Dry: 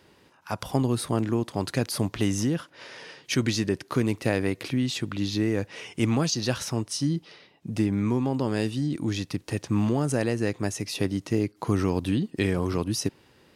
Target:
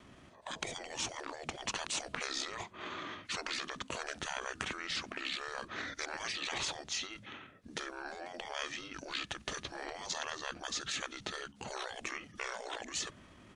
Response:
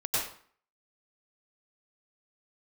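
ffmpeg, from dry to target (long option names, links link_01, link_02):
-af "afftfilt=real='re*lt(hypot(re,im),0.0447)':imag='im*lt(hypot(re,im),0.0447)':win_size=1024:overlap=0.75,asetrate=29433,aresample=44100,atempo=1.49831,volume=1.5dB"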